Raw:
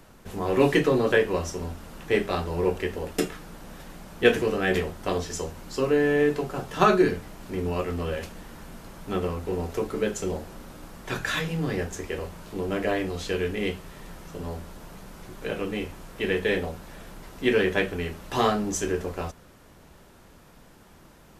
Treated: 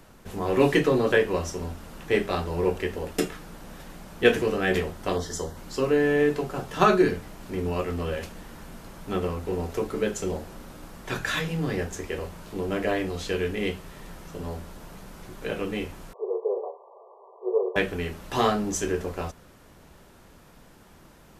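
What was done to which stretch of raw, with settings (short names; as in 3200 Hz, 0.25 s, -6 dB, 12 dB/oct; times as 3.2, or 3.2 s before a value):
5.16–5.57 Butterworth band-stop 2500 Hz, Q 2.8
16.13–17.76 brick-wall FIR band-pass 370–1200 Hz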